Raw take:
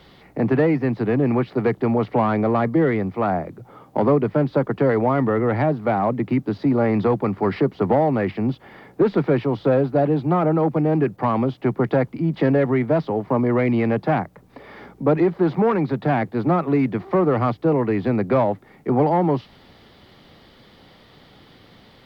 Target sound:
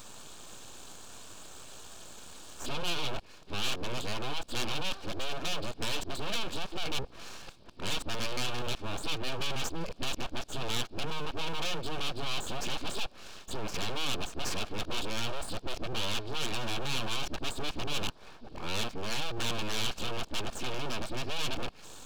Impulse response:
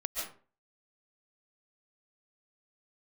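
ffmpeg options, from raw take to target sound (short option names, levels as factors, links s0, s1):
-af "areverse,aresample=11025,asoftclip=type=tanh:threshold=0.0708,aresample=44100,aexciter=amount=5.6:drive=5.2:freq=2400,aeval=exprs='abs(val(0))':c=same,bandreject=f=2000:w=6.3,volume=0.668"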